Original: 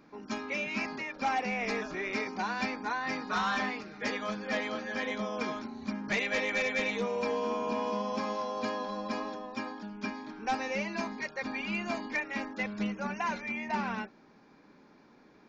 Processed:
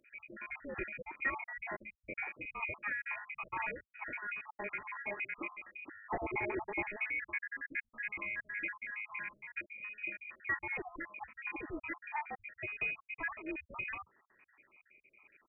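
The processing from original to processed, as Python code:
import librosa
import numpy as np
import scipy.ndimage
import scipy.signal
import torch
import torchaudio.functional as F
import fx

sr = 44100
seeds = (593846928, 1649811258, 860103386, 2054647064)

y = fx.spec_dropout(x, sr, seeds[0], share_pct=58)
y = scipy.signal.sosfilt(scipy.signal.butter(2, 120.0, 'highpass', fs=sr, output='sos'), y)
y = fx.freq_invert(y, sr, carrier_hz=2700)
y = y * 10.0 ** (-3.0 / 20.0)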